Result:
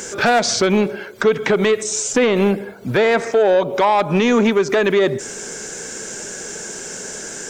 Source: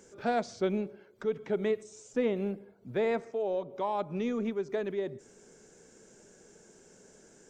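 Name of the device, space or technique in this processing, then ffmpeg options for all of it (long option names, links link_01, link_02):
mastering chain: -af "equalizer=frequency=1600:width_type=o:width=0.23:gain=3,acompressor=threshold=-32dB:ratio=2.5,asoftclip=type=tanh:threshold=-28dB,tiltshelf=frequency=820:gain=-5.5,asoftclip=type=hard:threshold=-28.5dB,alimiter=level_in=31.5dB:limit=-1dB:release=50:level=0:latency=1,volume=-6dB"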